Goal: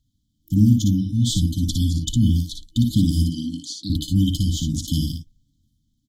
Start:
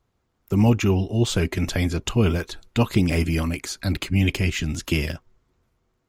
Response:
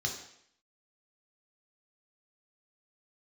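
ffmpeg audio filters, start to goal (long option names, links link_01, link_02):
-filter_complex "[0:a]asettb=1/sr,asplit=3[link_01][link_02][link_03];[link_01]atrim=end=3.274[link_04];[link_02]atrim=start=3.27:end=3.9,asetpts=PTS-STARTPTS,afade=type=in:duration=0.004:curve=qsin,afade=type=out:start_time=0.626:duration=0.004:curve=qsin,highpass=230,lowpass=5400[link_05];[link_03]atrim=start=3.896[link_06];[link_04][link_05]acrossfade=duration=0.004:curve1=hsin:curve2=qsin[link_07];[link_07][link_06]acrossfade=duration=0.004:curve1=qsin:curve2=hsin,asplit=2[link_08][link_09];[link_09]aecho=0:1:58|71:0.562|0.15[link_10];[link_08][link_10]amix=inputs=2:normalize=0,afftfilt=real='re*(1-between(b*sr/4096,320,3000))':imag='im*(1-between(b*sr/4096,320,3000))':win_size=4096:overlap=0.75,volume=2dB"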